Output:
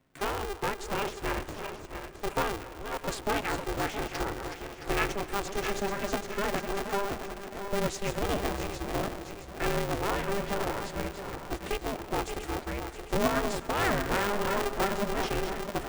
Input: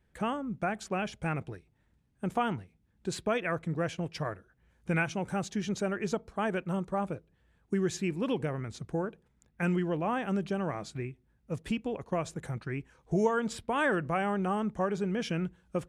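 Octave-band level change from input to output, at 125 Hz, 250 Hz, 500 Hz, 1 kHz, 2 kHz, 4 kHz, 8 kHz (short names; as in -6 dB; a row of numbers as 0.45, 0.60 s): -3.0, -3.0, +1.5, +3.0, +2.5, +7.5, +6.5 dB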